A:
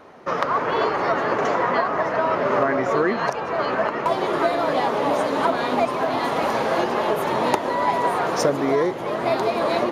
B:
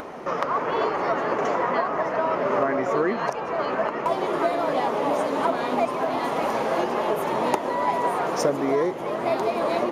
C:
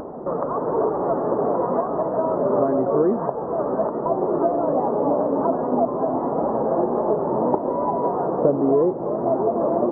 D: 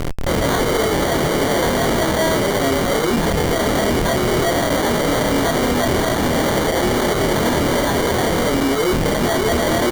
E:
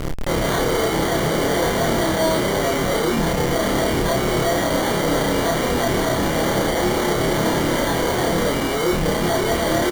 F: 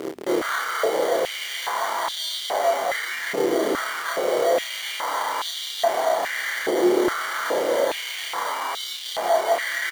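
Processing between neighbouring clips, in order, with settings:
graphic EQ with 15 bands 100 Hz −8 dB, 1,600 Hz −3 dB, 4,000 Hz −5 dB; upward compression, threshold −24 dBFS; level −2 dB
Gaussian smoothing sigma 9.9 samples; level +6.5 dB
comparator with hysteresis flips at −27 dBFS; double-tracking delay 25 ms −2.5 dB; decimation without filtering 17×; level +2 dB
double-tracking delay 31 ms −2.5 dB; level −4 dB
mains hum 50 Hz, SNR 14 dB; bit reduction 9 bits; high-pass on a step sequencer 2.4 Hz 370–3,500 Hz; level −6.5 dB

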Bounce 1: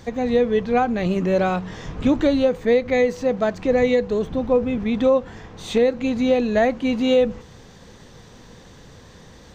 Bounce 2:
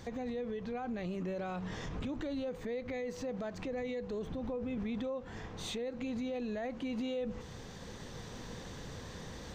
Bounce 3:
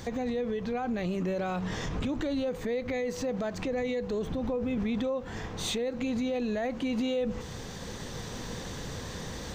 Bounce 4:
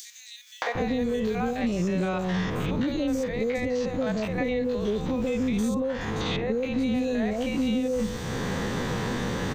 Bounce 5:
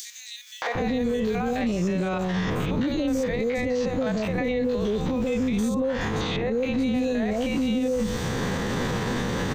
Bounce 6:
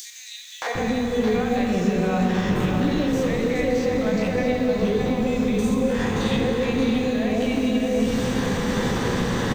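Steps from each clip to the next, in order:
downward compressor 6 to 1, threshold −24 dBFS, peak gain reduction 11 dB; brickwall limiter −26 dBFS, peak gain reduction 10.5 dB; speech leveller within 5 dB 2 s; level −5.5 dB
high-shelf EQ 6,300 Hz +5.5 dB; level +7 dB
spectrum averaged block by block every 50 ms; three-band delay without the direct sound highs, mids, lows 620/750 ms, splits 640/5,600 Hz; multiband upward and downward compressor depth 100%; level +5.5 dB
brickwall limiter −23 dBFS, peak gain reduction 9 dB; level +5 dB
log-companded quantiser 8 bits; single-tap delay 618 ms −7 dB; convolution reverb RT60 4.4 s, pre-delay 34 ms, DRR 1.5 dB

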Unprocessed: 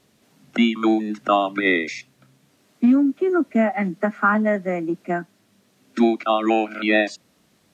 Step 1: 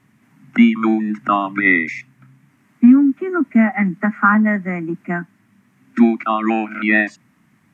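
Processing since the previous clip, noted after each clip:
octave-band graphic EQ 125/250/500/1,000/2,000/4,000 Hz +12/+10/−10/+8/+12/−10 dB
level −4 dB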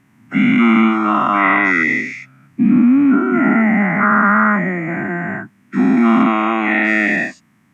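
every bin's largest magnitude spread in time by 480 ms
level −5 dB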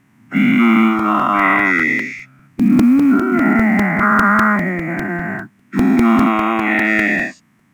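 log-companded quantiser 8 bits
regular buffer underruns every 0.20 s, samples 128, repeat, from 0:00.99

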